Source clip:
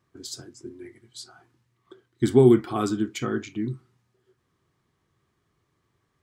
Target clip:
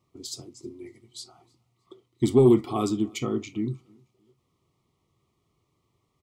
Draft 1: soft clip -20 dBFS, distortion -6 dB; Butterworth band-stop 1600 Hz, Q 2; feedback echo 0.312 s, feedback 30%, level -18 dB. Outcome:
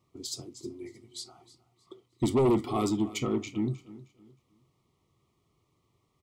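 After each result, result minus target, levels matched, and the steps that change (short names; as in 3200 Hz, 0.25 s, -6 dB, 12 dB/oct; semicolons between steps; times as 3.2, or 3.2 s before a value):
soft clip: distortion +13 dB; echo-to-direct +10.5 dB
change: soft clip -8 dBFS, distortion -19 dB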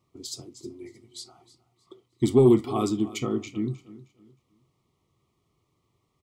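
echo-to-direct +10.5 dB
change: feedback echo 0.312 s, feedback 30%, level -28.5 dB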